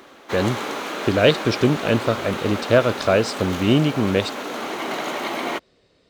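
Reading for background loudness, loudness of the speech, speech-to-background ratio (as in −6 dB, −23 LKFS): −28.5 LKFS, −21.0 LKFS, 7.5 dB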